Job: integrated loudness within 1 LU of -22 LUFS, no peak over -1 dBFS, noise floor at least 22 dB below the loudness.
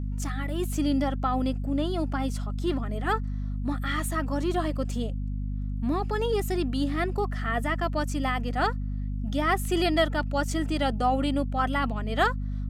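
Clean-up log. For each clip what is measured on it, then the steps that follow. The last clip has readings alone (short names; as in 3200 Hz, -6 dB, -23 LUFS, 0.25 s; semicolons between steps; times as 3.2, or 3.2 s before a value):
hum 50 Hz; harmonics up to 250 Hz; hum level -28 dBFS; loudness -28.0 LUFS; peak -11.0 dBFS; loudness target -22.0 LUFS
-> notches 50/100/150/200/250 Hz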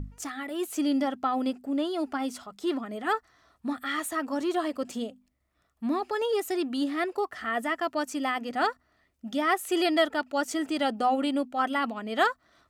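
hum none; loudness -29.0 LUFS; peak -11.0 dBFS; loudness target -22.0 LUFS
-> gain +7 dB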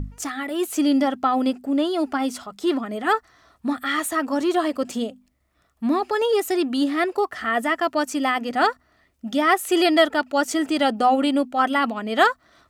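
loudness -22.0 LUFS; peak -4.0 dBFS; noise floor -65 dBFS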